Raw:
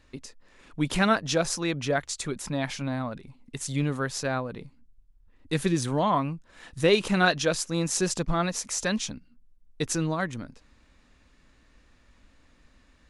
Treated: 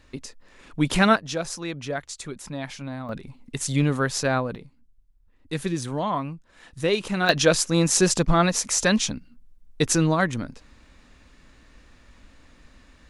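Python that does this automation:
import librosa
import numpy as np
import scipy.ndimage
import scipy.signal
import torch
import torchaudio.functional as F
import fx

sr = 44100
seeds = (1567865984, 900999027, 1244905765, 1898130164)

y = fx.gain(x, sr, db=fx.steps((0.0, 4.5), (1.16, -3.5), (3.09, 5.5), (4.56, -2.0), (7.29, 7.0)))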